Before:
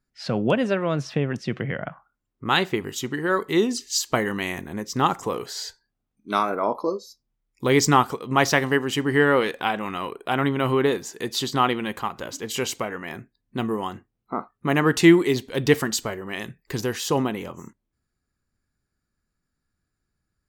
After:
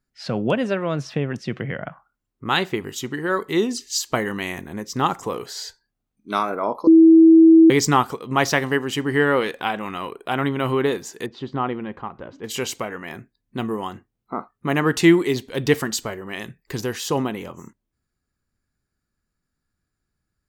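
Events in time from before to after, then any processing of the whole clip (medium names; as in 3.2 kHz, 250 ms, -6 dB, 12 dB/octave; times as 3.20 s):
6.87–7.70 s: bleep 325 Hz -6.5 dBFS
11.26–12.44 s: tape spacing loss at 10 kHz 44 dB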